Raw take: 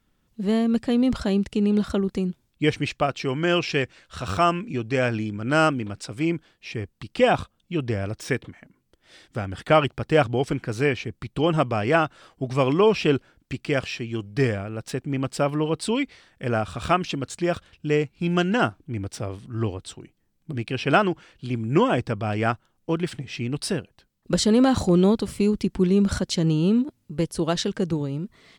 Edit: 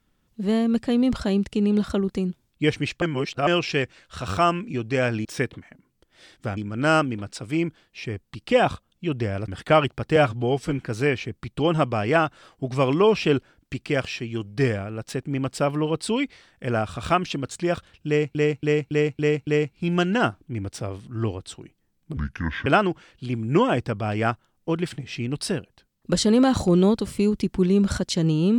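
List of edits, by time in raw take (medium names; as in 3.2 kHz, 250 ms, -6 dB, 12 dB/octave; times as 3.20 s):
3.02–3.47 s: reverse
8.16–9.48 s: move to 5.25 s
10.16–10.58 s: stretch 1.5×
17.86–18.14 s: loop, 6 plays
20.56–20.87 s: speed 63%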